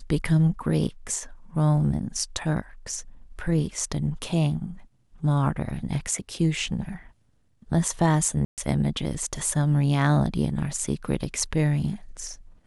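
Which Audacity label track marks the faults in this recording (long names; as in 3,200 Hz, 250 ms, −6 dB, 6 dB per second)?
0.870000	0.870000	drop-out 4.2 ms
8.450000	8.580000	drop-out 128 ms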